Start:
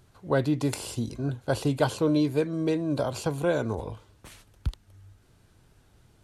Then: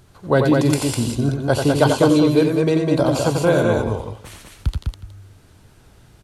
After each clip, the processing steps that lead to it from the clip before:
multi-tap delay 89/101/203/367 ms −5.5/−15/−3.5/−17.5 dB
level +8 dB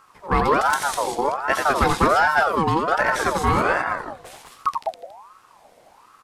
asymmetric clip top −9.5 dBFS
ring modulator whose carrier an LFO sweeps 900 Hz, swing 35%, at 1.3 Hz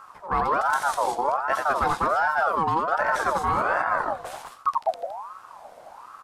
flat-topped bell 940 Hz +8 dB
reversed playback
downward compressor 5 to 1, threshold −21 dBFS, peak gain reduction 13.5 dB
reversed playback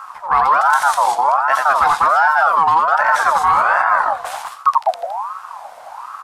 low shelf with overshoot 590 Hz −12 dB, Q 1.5
in parallel at −2.5 dB: brickwall limiter −19.5 dBFS, peak gain reduction 10 dB
on the sum: level +5.5 dB

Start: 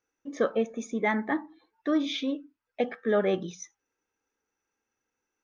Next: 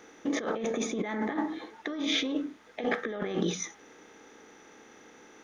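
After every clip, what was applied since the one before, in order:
compressor on every frequency bin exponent 0.6
notch filter 570 Hz, Q 12
compressor whose output falls as the input rises −31 dBFS, ratio −1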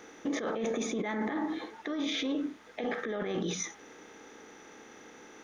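brickwall limiter −26.5 dBFS, peak gain reduction 10.5 dB
level +2 dB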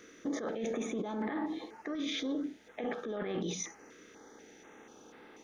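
notch on a step sequencer 4.1 Hz 830–6,300 Hz
level −2.5 dB

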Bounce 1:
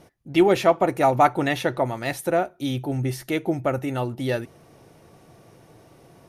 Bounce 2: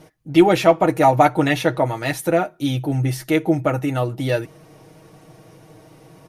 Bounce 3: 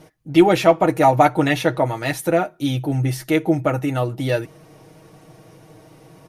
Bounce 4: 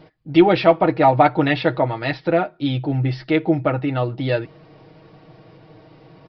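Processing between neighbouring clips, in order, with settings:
comb filter 6.4 ms; level +3 dB
no processing that can be heard
downsampling to 11,025 Hz

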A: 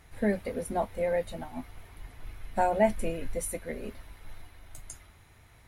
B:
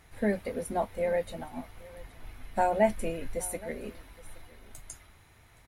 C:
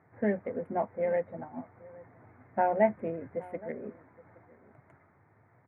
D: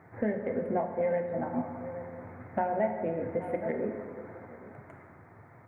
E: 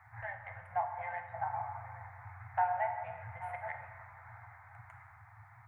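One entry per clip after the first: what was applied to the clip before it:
low-shelf EQ 140 Hz −3.5 dB; single-tap delay 819 ms −21 dB
adaptive Wiener filter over 15 samples; elliptic band-pass filter 110–2,100 Hz, stop band 40 dB
downward compressor 5 to 1, threshold −37 dBFS, peak gain reduction 16.5 dB; convolution reverb RT60 2.0 s, pre-delay 8 ms, DRR 4.5 dB; level +8.5 dB
Chebyshev band-stop filter 120–780 Hz, order 4; dynamic equaliser 660 Hz, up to +5 dB, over −50 dBFS, Q 0.78

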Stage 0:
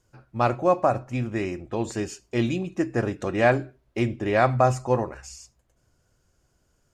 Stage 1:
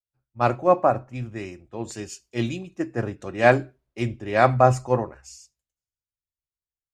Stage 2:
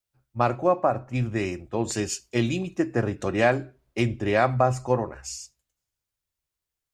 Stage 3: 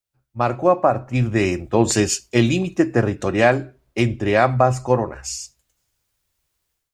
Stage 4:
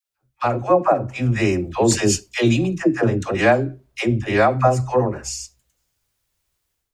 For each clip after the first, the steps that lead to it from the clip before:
multiband upward and downward expander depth 100%; level −1 dB
downward compressor 3 to 1, threshold −30 dBFS, peak gain reduction 15 dB; level +8.5 dB
automatic gain control gain up to 14 dB; level −1 dB
all-pass dispersion lows, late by 91 ms, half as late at 570 Hz

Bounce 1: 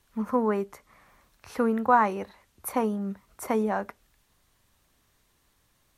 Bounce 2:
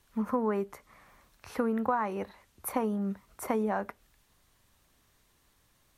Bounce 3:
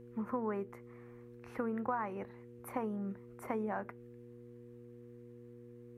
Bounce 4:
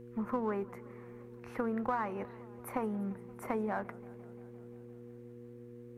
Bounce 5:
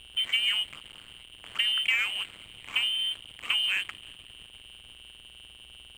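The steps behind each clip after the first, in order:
dynamic equaliser 6,200 Hz, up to −4 dB, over −54 dBFS, Q 0.73; downward compressor 6 to 1, threshold −25 dBFS, peak gain reduction 10.5 dB
high shelf with overshoot 2,900 Hz −8 dB, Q 1.5; hum with harmonics 120 Hz, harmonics 4, −46 dBFS 0 dB per octave; level −7.5 dB
in parallel at −7 dB: asymmetric clip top −41 dBFS; on the sum: feedback echo with a swinging delay time 173 ms, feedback 75%, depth 178 cents, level −22 dB
voice inversion scrambler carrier 3,300 Hz; hum with harmonics 100 Hz, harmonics 34, −67 dBFS −2 dB per octave; slack as between gear wheels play −40.5 dBFS; level +7.5 dB

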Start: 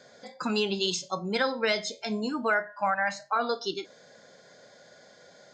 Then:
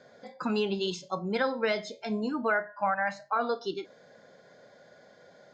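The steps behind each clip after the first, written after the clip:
low-pass filter 1,800 Hz 6 dB per octave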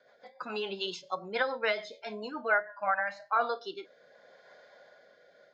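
three-way crossover with the lows and the highs turned down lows −17 dB, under 490 Hz, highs −15 dB, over 5,100 Hz
automatic gain control gain up to 5 dB
rotating-speaker cabinet horn 7 Hz, later 0.75 Hz, at 0:02.43
level −1.5 dB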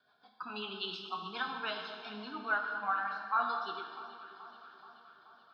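phaser with its sweep stopped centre 2,000 Hz, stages 6
delay that swaps between a low-pass and a high-pass 215 ms, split 1,300 Hz, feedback 79%, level −12.5 dB
convolution reverb RT60 1.8 s, pre-delay 3 ms, DRR 3.5 dB
level −2.5 dB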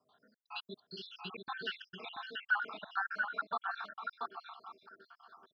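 time-frequency cells dropped at random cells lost 72%
gate pattern "xxx.xxx.x" 132 BPM −60 dB
single-tap delay 684 ms −4 dB
level +2.5 dB

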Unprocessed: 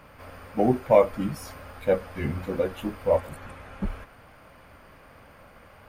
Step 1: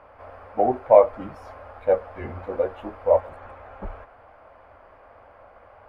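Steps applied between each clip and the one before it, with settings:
drawn EQ curve 100 Hz 0 dB, 150 Hz −11 dB, 700 Hz +11 dB, 13,000 Hz −22 dB
level −4 dB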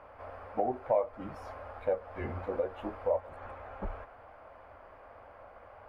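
downward compressor 2.5 to 1, threshold −28 dBFS, peak gain reduction 14 dB
level −2.5 dB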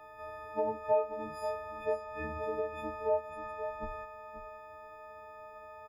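every partial snapped to a pitch grid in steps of 6 semitones
single-tap delay 532 ms −10.5 dB
level −4 dB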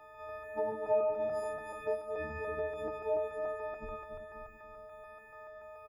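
feedback delay that plays each chunk backwards 144 ms, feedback 71%, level −5 dB
double-tracking delay 21 ms −11.5 dB
level −3 dB

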